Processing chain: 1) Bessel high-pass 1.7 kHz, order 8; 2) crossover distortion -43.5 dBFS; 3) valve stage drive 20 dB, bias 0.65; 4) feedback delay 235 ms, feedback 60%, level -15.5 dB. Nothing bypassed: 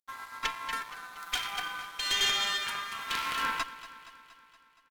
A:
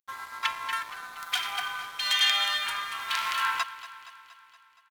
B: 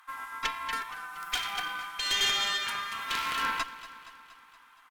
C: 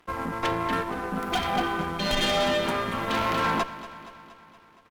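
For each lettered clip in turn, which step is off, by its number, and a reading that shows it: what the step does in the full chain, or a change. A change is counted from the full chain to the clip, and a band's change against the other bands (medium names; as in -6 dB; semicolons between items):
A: 3, crest factor change +6.0 dB; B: 2, distortion -17 dB; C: 1, 8 kHz band -17.5 dB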